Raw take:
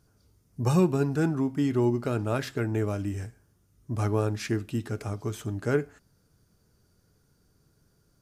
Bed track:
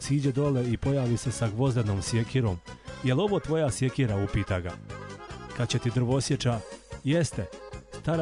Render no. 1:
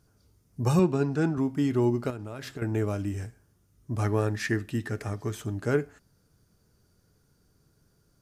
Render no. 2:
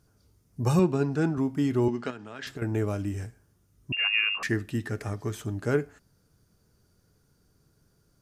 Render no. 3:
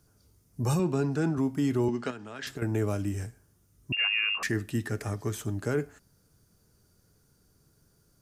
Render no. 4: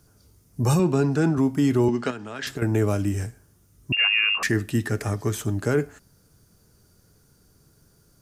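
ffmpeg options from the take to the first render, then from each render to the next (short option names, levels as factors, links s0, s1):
-filter_complex "[0:a]asettb=1/sr,asplit=3[s0][s1][s2];[s0]atrim=end=0.794[s3];[s1]atrim=start=0.79:end=1.38,asetpts=PTS-STARTPTS,afade=t=in:d=0.004:c=qsin,afade=t=out:st=0.586:d=0.004:c=qsin,highpass=110,lowpass=6800[s4];[s2]atrim=start=1.376[s5];[s3][s4]acrossfade=d=0.004:c1=hsin:c2=qsin[s6];[s6][s5]acrossfade=d=0.004:c1=qsin:c2=hsin,asettb=1/sr,asplit=3[s7][s8][s9];[s7]atrim=end=2.104[s10];[s8]atrim=start=2.1:end=2.62,asetpts=PTS-STARTPTS,afade=t=in:d=0.004:c=qsin,afade=t=out:st=0.516:d=0.004:c=qsin,acompressor=threshold=0.02:ratio=5:attack=3.2:release=140:knee=1:detection=peak[s11];[s9]atrim=start=2.616[s12];[s10][s11]acrossfade=d=0.004:c1=hsin:c2=qsin[s13];[s13][s12]acrossfade=d=0.004:c1=qsin:c2=hsin,asettb=1/sr,asplit=3[s14][s15][s16];[s14]atrim=end=4.044[s17];[s15]atrim=start=4.04:end=5.35,asetpts=PTS-STARTPTS,afade=t=in:d=0.004:c=qsin,afade=t=out:st=1.306:d=0.004:c=qsin,equalizer=f=1800:w=7.1:g=13.5[s18];[s16]atrim=start=5.346[s19];[s17][s18]acrossfade=d=0.004:c1=hsin:c2=qsin[s20];[s20][s19]acrossfade=d=0.004:c1=qsin:c2=hsin"
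-filter_complex "[0:a]asettb=1/sr,asplit=3[s0][s1][s2];[s0]atrim=end=1.884[s3];[s1]atrim=start=1.88:end=2.47,asetpts=PTS-STARTPTS,afade=t=in:d=0.004:c=qsin,afade=t=out:st=0.586:d=0.004:c=qsin,highpass=f=140:w=0.5412,highpass=f=140:w=1.3066,equalizer=f=140:t=q:w=4:g=-9,equalizer=f=330:t=q:w=4:g=-6,equalizer=f=570:t=q:w=4:g=-6,equalizer=f=1700:t=q:w=4:g=8,equalizer=f=3100:t=q:w=4:g=8,lowpass=f=7500:w=0.5412,lowpass=f=7500:w=1.3066[s4];[s2]atrim=start=2.466[s5];[s3][s4]acrossfade=d=0.004:c1=hsin:c2=qsin[s6];[s6][s5]acrossfade=d=0.004:c1=qsin:c2=hsin,asettb=1/sr,asplit=3[s7][s8][s9];[s7]atrim=end=3.924[s10];[s8]atrim=start=3.92:end=4.43,asetpts=PTS-STARTPTS,afade=t=in:d=0.004:c=qsin,afade=t=out:st=0.506:d=0.004:c=qsin,lowpass=f=2500:t=q:w=0.5098,lowpass=f=2500:t=q:w=0.6013,lowpass=f=2500:t=q:w=0.9,lowpass=f=2500:t=q:w=2.563,afreqshift=-2900[s11];[s9]atrim=start=4.426[s12];[s10][s11]acrossfade=d=0.004:c1=hsin:c2=qsin[s13];[s13][s12]acrossfade=d=0.004:c1=qsin:c2=hsin"
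-filter_complex "[0:a]acrossover=split=180|6000[s0][s1][s2];[s2]acontrast=34[s3];[s0][s1][s3]amix=inputs=3:normalize=0,alimiter=limit=0.119:level=0:latency=1:release=14"
-af "volume=2.11"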